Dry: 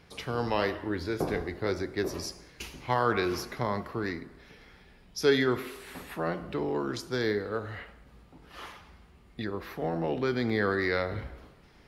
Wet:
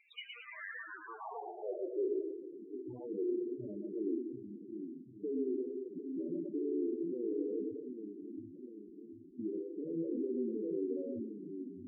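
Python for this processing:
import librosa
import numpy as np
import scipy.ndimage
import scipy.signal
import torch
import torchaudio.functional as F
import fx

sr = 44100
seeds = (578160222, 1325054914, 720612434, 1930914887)

p1 = fx.tube_stage(x, sr, drive_db=38.0, bias=0.65)
p2 = fx.filter_sweep_bandpass(p1, sr, from_hz=2600.0, to_hz=310.0, start_s=0.31, end_s=2.31, q=3.0)
p3 = p2 + fx.echo_split(p2, sr, split_hz=310.0, low_ms=737, high_ms=113, feedback_pct=52, wet_db=-3.0, dry=0)
p4 = fx.spec_topn(p3, sr, count=8)
y = F.gain(torch.from_numpy(p4), 9.0).numpy()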